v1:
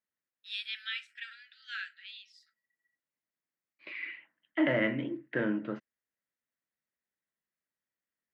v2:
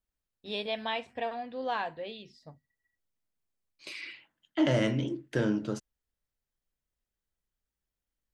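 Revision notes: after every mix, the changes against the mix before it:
first voice: remove brick-wall FIR high-pass 1.3 kHz; second voice: remove cabinet simulation 220–2600 Hz, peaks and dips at 420 Hz -5 dB, 810 Hz -4 dB, 1.9 kHz +8 dB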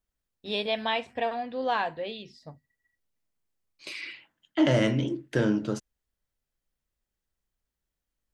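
first voice +5.0 dB; second voice +3.5 dB

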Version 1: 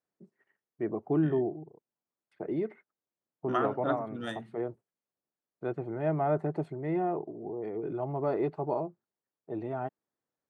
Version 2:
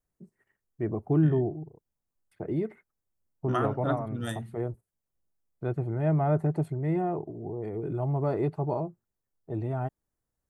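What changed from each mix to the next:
master: remove band-pass 240–4500 Hz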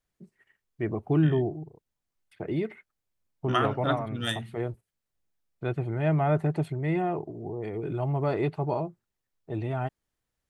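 master: add peaking EQ 3 kHz +13.5 dB 1.7 oct

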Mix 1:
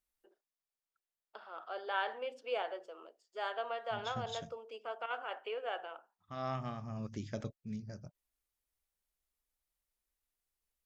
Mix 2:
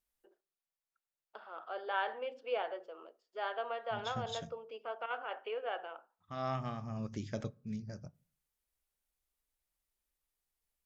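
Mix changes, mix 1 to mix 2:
first voice: add distance through air 160 m; reverb: on, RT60 0.45 s

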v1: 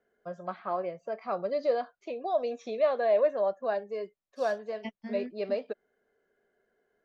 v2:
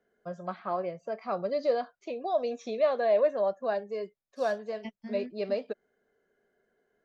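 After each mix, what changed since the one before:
second voice -4.0 dB; master: add tone controls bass +5 dB, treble +5 dB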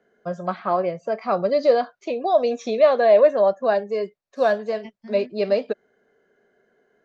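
first voice +10.0 dB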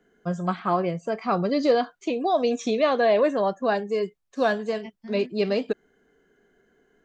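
first voice: remove cabinet simulation 130–5800 Hz, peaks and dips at 170 Hz -5 dB, 290 Hz -8 dB, 590 Hz +9 dB, 3.1 kHz -5 dB

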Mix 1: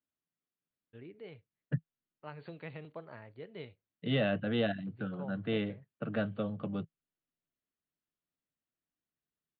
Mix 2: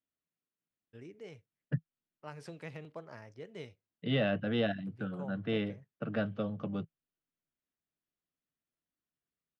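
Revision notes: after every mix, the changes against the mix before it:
master: remove brick-wall FIR low-pass 4.6 kHz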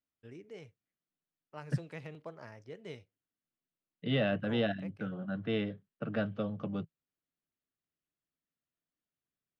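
first voice: entry -0.70 s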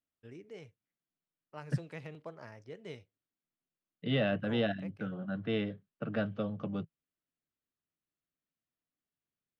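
no change

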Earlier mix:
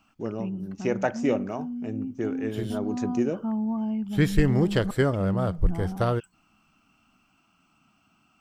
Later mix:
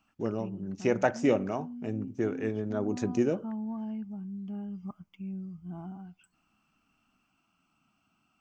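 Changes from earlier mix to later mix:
second voice: muted; background -8.0 dB

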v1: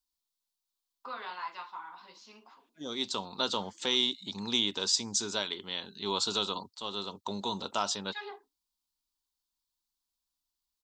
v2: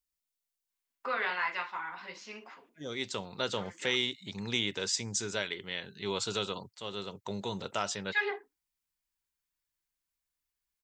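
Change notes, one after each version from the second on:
first voice +9.0 dB; master: add graphic EQ 125/250/500/1000/2000/4000 Hz +10/-6/+4/-9/+11/-9 dB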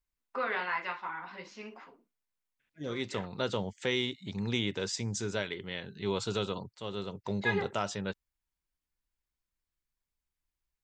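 first voice: entry -0.70 s; master: add tilt EQ -2 dB/octave

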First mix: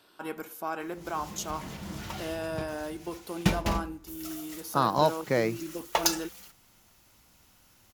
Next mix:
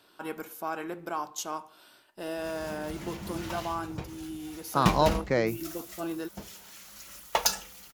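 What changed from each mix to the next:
background: entry +1.40 s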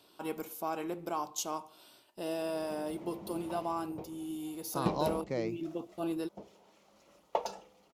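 second voice -8.5 dB; background: add band-pass filter 510 Hz, Q 1; master: add peaking EQ 1.6 kHz -10.5 dB 0.71 oct

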